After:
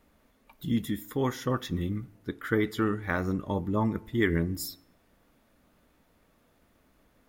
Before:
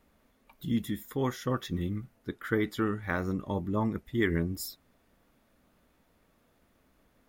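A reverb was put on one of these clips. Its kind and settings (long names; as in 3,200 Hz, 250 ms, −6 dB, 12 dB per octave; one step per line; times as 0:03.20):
feedback delay network reverb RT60 0.79 s, low-frequency decay 1.1×, high-frequency decay 0.6×, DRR 18.5 dB
level +2 dB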